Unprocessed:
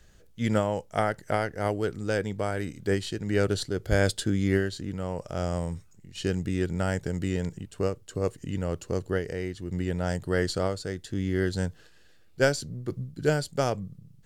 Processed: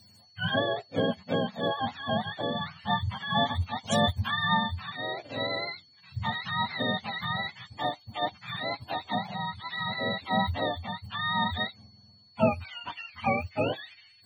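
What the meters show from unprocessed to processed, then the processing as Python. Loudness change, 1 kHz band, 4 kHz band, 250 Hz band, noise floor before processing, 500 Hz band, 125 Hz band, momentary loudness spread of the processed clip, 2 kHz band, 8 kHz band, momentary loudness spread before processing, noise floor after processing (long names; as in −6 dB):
−1.0 dB, +6.0 dB, +7.5 dB, −4.0 dB, −55 dBFS, −4.5 dB, −5.5 dB, 8 LU, +2.5 dB, −9.0 dB, 8 LU, −59 dBFS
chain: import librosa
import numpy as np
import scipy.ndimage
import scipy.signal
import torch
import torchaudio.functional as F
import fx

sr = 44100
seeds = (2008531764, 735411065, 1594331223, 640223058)

y = fx.octave_mirror(x, sr, pivot_hz=590.0)
y = y + 10.0 ** (-57.0 / 20.0) * np.sin(2.0 * np.pi * 4400.0 * np.arange(len(y)) / sr)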